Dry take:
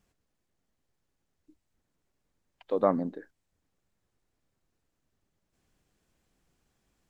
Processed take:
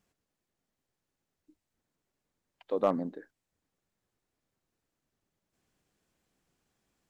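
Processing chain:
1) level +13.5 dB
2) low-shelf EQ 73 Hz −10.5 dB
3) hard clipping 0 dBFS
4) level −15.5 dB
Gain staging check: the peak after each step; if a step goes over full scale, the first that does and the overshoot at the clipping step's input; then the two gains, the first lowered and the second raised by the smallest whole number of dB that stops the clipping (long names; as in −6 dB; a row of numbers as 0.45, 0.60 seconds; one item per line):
+4.0, +3.5, 0.0, −15.5 dBFS
step 1, 3.5 dB
step 1 +9.5 dB, step 4 −11.5 dB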